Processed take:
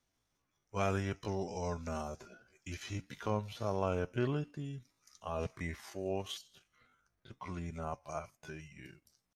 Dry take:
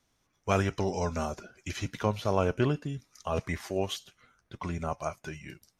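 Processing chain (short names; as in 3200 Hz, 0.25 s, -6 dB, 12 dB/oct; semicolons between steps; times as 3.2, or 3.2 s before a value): tempo 0.62×; gain -7.5 dB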